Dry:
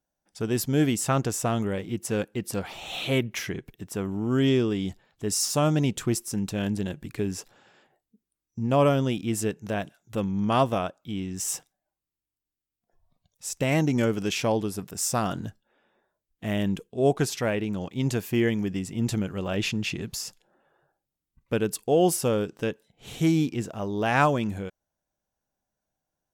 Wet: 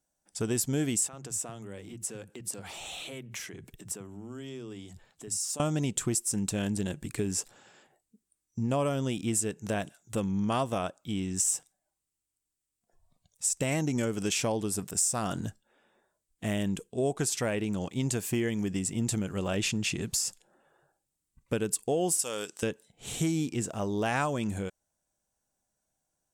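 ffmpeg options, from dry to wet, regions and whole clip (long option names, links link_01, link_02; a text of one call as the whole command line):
ffmpeg -i in.wav -filter_complex "[0:a]asettb=1/sr,asplit=3[link_01][link_02][link_03];[link_01]atrim=end=1.074[link_04];[link_02]atrim=start=1.07:end=5.6,asetpts=PTS-STARTPTS,afade=type=in:duration=0.004:curve=qsin,afade=type=out:start_time=4.526:duration=0.004:curve=qsin,acompressor=threshold=-40dB:ratio=4:attack=3.2:release=140:knee=1:detection=peak,acrossover=split=180[link_05][link_06];[link_05]adelay=50[link_07];[link_07][link_06]amix=inputs=2:normalize=0,atrim=end_sample=199773[link_08];[link_03]atrim=start=5.596[link_09];[link_04][link_08]acrossfade=duration=0.004:curve1=hsin:curve2=qsin[link_10];[link_10][link_09]acrossfade=duration=0.004:curve1=qsin:curve2=hsin,asettb=1/sr,asplit=3[link_11][link_12][link_13];[link_11]atrim=end=22.194[link_14];[link_12]atrim=start=22.19:end=22.63,asetpts=PTS-STARTPTS,afade=type=in:duration=0.004:curve=qsin,afade=type=out:start_time=0.436:duration=0.004:curve=qsin,highpass=frequency=990:poles=1,equalizer=frequency=7500:width=0.35:gain=7[link_15];[link_13]atrim=start=22.626[link_16];[link_14][link_15]acrossfade=duration=0.004:curve1=hsin:curve2=qsin[link_17];[link_17][link_16]acrossfade=duration=0.004:curve1=qsin:curve2=hsin,equalizer=frequency=8200:width=1.5:gain=13,acompressor=threshold=-26dB:ratio=4" out.wav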